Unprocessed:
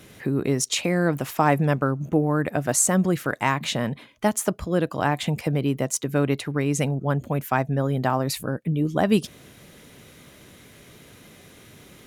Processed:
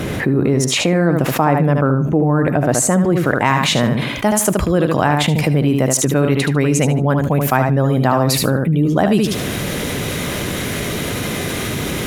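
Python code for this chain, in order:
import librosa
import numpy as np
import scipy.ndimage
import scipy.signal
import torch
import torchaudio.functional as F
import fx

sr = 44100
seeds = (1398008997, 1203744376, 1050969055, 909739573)

y = fx.high_shelf(x, sr, hz=2400.0, db=fx.steps((0.0, -12.0), (3.44, -2.5)))
y = fx.echo_feedback(y, sr, ms=75, feedback_pct=17, wet_db=-7.5)
y = fx.env_flatten(y, sr, amount_pct=70)
y = y * librosa.db_to_amplitude(3.0)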